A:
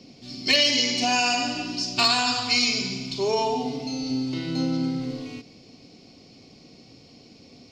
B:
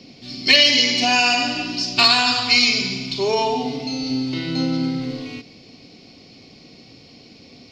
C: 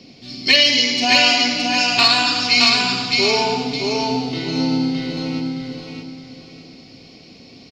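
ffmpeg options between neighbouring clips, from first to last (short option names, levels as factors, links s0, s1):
-af "equalizer=f=2000:t=o:w=1:g=4,equalizer=f=4000:t=o:w=1:g=4,equalizer=f=8000:t=o:w=1:g=-5,volume=1.5"
-af "aecho=1:1:618|1236|1854|2472:0.708|0.219|0.068|0.0211"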